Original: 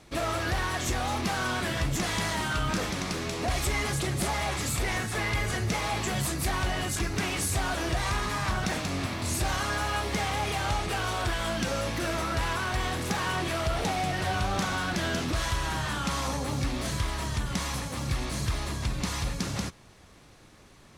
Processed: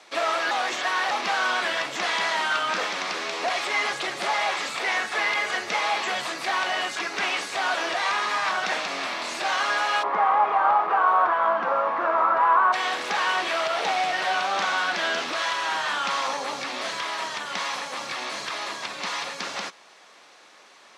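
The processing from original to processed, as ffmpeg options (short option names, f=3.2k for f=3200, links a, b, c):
-filter_complex "[0:a]asplit=3[a][b][c];[a]afade=t=out:st=10.02:d=0.02[d];[b]lowpass=f=1.1k:t=q:w=3.2,afade=t=in:st=10.02:d=0.02,afade=t=out:st=12.72:d=0.02[e];[c]afade=t=in:st=12.72:d=0.02[f];[d][e][f]amix=inputs=3:normalize=0,asplit=3[g][h][i];[g]atrim=end=0.512[j];[h]atrim=start=0.508:end=1.112,asetpts=PTS-STARTPTS,areverse[k];[i]atrim=start=1.108[l];[j][k]acrossfade=d=0.004:c1=hsin:c2=hsin[m];[m][l]acrossfade=d=0.004:c1=hsin:c2=hsin,acrossover=split=4600[n][o];[o]acompressor=threshold=-45dB:ratio=4:attack=1:release=60[p];[n][p]amix=inputs=2:normalize=0,highpass=f=190:w=0.5412,highpass=f=190:w=1.3066,acrossover=split=510 7400:gain=0.1 1 0.178[q][r][s];[q][r][s]amix=inputs=3:normalize=0,volume=7.5dB"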